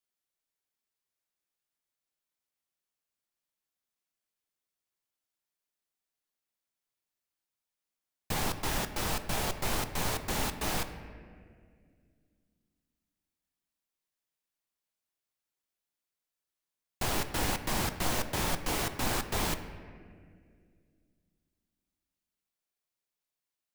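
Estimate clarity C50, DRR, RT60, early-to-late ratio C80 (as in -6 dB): 10.5 dB, 8.5 dB, 2.1 s, 11.5 dB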